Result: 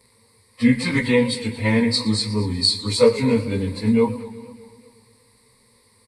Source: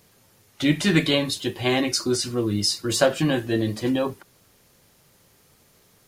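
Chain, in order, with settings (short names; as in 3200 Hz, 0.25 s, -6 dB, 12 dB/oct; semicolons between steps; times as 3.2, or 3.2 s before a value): pitch shift by moving bins -2.5 st; ripple EQ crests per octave 0.94, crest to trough 17 dB; feedback echo 0.215 s, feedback 56%, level -21.5 dB; warbling echo 0.12 s, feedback 67%, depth 148 cents, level -17 dB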